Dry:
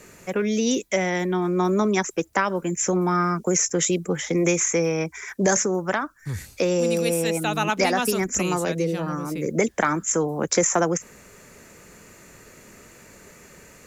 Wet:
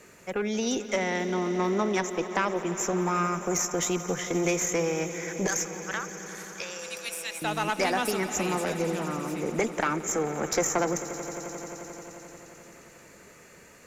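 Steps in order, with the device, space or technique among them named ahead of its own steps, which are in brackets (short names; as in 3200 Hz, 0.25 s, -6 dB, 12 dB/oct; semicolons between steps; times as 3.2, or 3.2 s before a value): 5.47–7.42 HPF 1300 Hz 12 dB/oct; tube preamp driven hard (tube stage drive 14 dB, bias 0.45; low shelf 190 Hz -6.5 dB; high shelf 6100 Hz -5 dB); swelling echo 88 ms, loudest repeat 5, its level -17.5 dB; gain -1.5 dB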